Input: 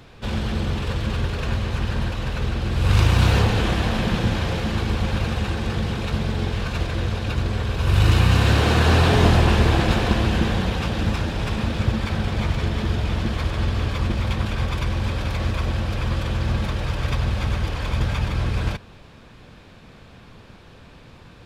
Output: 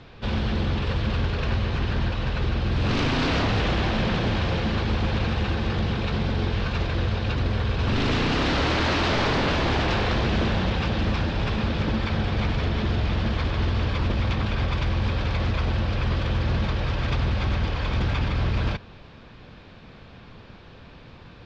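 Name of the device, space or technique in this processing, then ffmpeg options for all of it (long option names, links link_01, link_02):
synthesiser wavefolder: -af "aeval=exprs='0.133*(abs(mod(val(0)/0.133+3,4)-2)-1)':channel_layout=same,lowpass=frequency=5200:width=0.5412,lowpass=frequency=5200:width=1.3066"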